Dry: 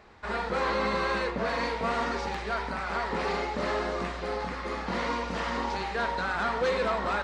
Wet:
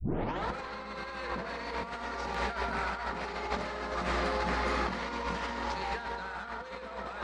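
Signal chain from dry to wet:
turntable start at the beginning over 0.47 s
delay with a band-pass on its return 147 ms, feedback 46%, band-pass 710 Hz, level −4 dB
convolution reverb RT60 4.1 s, pre-delay 53 ms, DRR 8.5 dB
dynamic equaliser 480 Hz, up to −4 dB, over −39 dBFS, Q 0.99
notch filter 1,100 Hz, Q 24
compressor whose output falls as the input rises −34 dBFS, ratio −0.5

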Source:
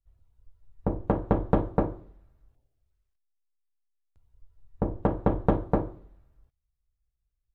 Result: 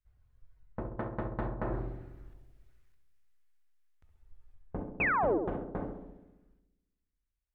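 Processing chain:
source passing by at 0:02.57, 34 m/s, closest 21 metres
parametric band 1,800 Hz +9.5 dB 1.4 octaves
reversed playback
downward compressor 5 to 1, threshold −42 dBFS, peak gain reduction 18.5 dB
reversed playback
sound drawn into the spectrogram fall, 0:05.00–0:05.38, 290–2,700 Hz −36 dBFS
feedback echo with a low-pass in the loop 67 ms, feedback 72%, low-pass 1,100 Hz, level −6 dB
level +7.5 dB

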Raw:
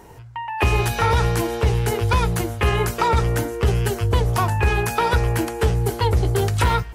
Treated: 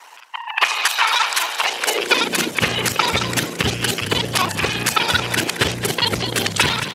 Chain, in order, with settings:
reversed piece by piece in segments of 34 ms
meter weighting curve D
in parallel at 0 dB: brickwall limiter −10 dBFS, peak gain reduction 7 dB
on the sum: harmonic and percussive parts rebalanced harmonic −18 dB
high-pass filter sweep 1,000 Hz → 110 Hz, 0:01.54–0:02.72
on a send: echo with shifted repeats 220 ms, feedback 41%, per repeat +52 Hz, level −10 dB

